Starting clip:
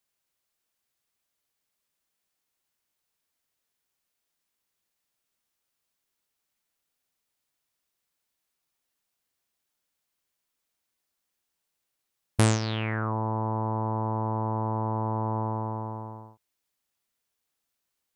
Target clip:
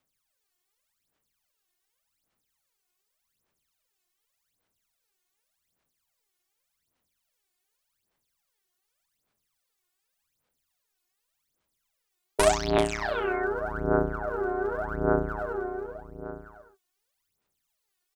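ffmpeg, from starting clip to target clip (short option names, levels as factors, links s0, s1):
-af "aeval=exprs='val(0)*sin(2*PI*510*n/s)':c=same,aecho=1:1:391:0.398,aphaser=in_gain=1:out_gain=1:delay=2.8:decay=0.79:speed=0.86:type=sinusoidal"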